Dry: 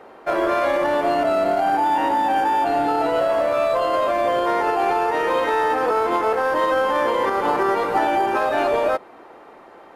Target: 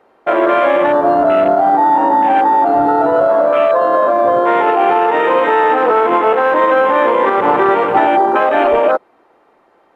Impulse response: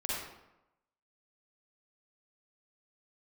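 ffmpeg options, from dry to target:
-af "afwtdn=0.0447,volume=8dB"

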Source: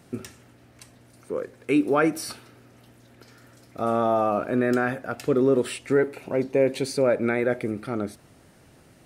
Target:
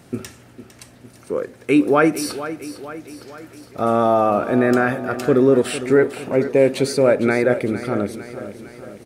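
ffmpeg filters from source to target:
ffmpeg -i in.wav -af "aecho=1:1:455|910|1365|1820|2275|2730:0.224|0.121|0.0653|0.0353|0.019|0.0103,volume=6dB" out.wav

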